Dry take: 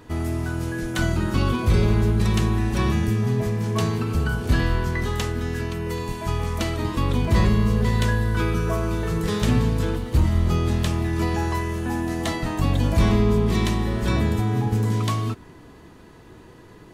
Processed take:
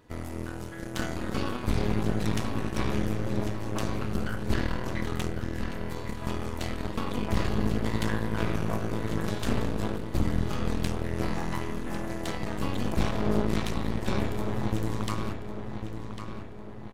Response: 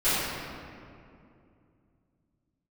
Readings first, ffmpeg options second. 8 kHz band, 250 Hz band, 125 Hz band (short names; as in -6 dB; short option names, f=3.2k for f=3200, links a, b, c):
-6.5 dB, -6.5 dB, -10.5 dB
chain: -filter_complex "[0:a]aeval=exprs='0.316*(cos(1*acos(clip(val(0)/0.316,-1,1)))-cos(1*PI/2))+0.141*(cos(4*acos(clip(val(0)/0.316,-1,1)))-cos(4*PI/2))':c=same,asplit=2[a][b];[b]adelay=1100,lowpass=f=4.6k:p=1,volume=-8dB,asplit=2[c][d];[d]adelay=1100,lowpass=f=4.6k:p=1,volume=0.52,asplit=2[e][f];[f]adelay=1100,lowpass=f=4.6k:p=1,volume=0.52,asplit=2[g][h];[h]adelay=1100,lowpass=f=4.6k:p=1,volume=0.52,asplit=2[i][j];[j]adelay=1100,lowpass=f=4.6k:p=1,volume=0.52,asplit=2[k][l];[l]adelay=1100,lowpass=f=4.6k:p=1,volume=0.52[m];[a][c][e][g][i][k][m]amix=inputs=7:normalize=0,tremolo=f=210:d=0.667,volume=-8.5dB"